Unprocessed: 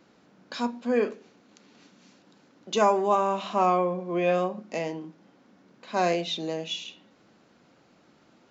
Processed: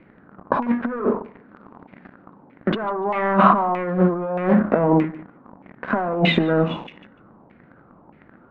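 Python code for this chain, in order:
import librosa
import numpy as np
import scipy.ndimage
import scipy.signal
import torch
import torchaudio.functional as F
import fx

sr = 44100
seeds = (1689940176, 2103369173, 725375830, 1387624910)

y = scipy.signal.sosfilt(scipy.signal.butter(6, 4700.0, 'lowpass', fs=sr, output='sos'), x)
y = fx.tilt_eq(y, sr, slope=-3.5)
y = fx.leveller(y, sr, passes=3)
y = fx.over_compress(y, sr, threshold_db=-20.0, ratio=-0.5)
y = fx.filter_lfo_lowpass(y, sr, shape='saw_down', hz=1.6, low_hz=860.0, high_hz=2300.0, q=4.5)
y = fx.echo_feedback(y, sr, ms=147, feedback_pct=17, wet_db=-22.5)
y = fx.end_taper(y, sr, db_per_s=140.0)
y = y * librosa.db_to_amplitude(2.0)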